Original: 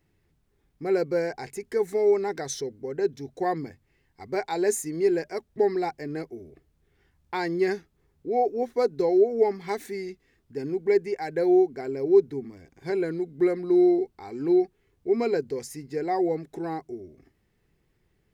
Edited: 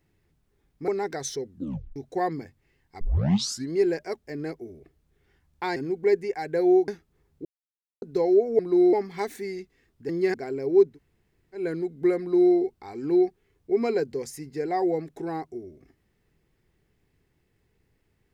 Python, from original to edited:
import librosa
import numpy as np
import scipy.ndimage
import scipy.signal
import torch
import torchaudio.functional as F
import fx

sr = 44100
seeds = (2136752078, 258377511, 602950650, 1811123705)

y = fx.edit(x, sr, fx.cut(start_s=0.88, length_s=1.25),
    fx.tape_stop(start_s=2.71, length_s=0.5),
    fx.tape_start(start_s=4.26, length_s=0.71),
    fx.cut(start_s=5.52, length_s=0.46),
    fx.swap(start_s=7.47, length_s=0.25, other_s=10.59, other_length_s=1.12),
    fx.silence(start_s=8.29, length_s=0.57),
    fx.room_tone_fill(start_s=12.28, length_s=0.69, crossfade_s=0.16),
    fx.duplicate(start_s=13.57, length_s=0.34, to_s=9.43), tone=tone)